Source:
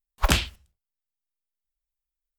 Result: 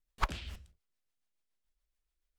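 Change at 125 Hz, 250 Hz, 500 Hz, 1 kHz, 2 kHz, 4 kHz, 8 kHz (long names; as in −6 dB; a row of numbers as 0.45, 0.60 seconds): −14.5, −18.0, −16.5, −7.5, −13.0, −17.5, −22.5 decibels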